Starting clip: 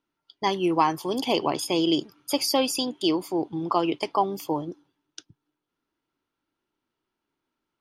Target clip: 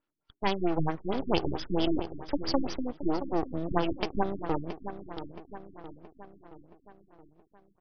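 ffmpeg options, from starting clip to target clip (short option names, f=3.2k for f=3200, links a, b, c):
-filter_complex "[0:a]asplit=2[a][b];[b]adelay=673,lowpass=f=1.9k:p=1,volume=-10.5dB,asplit=2[c][d];[d]adelay=673,lowpass=f=1.9k:p=1,volume=0.55,asplit=2[e][f];[f]adelay=673,lowpass=f=1.9k:p=1,volume=0.55,asplit=2[g][h];[h]adelay=673,lowpass=f=1.9k:p=1,volume=0.55,asplit=2[i][j];[j]adelay=673,lowpass=f=1.9k:p=1,volume=0.55,asplit=2[k][l];[l]adelay=673,lowpass=f=1.9k:p=1,volume=0.55[m];[a][c][e][g][i][k][m]amix=inputs=7:normalize=0,aeval=exprs='max(val(0),0)':c=same,afftfilt=real='re*lt(b*sr/1024,340*pow(6400/340,0.5+0.5*sin(2*PI*4.5*pts/sr)))':imag='im*lt(b*sr/1024,340*pow(6400/340,0.5+0.5*sin(2*PI*4.5*pts/sr)))':win_size=1024:overlap=0.75"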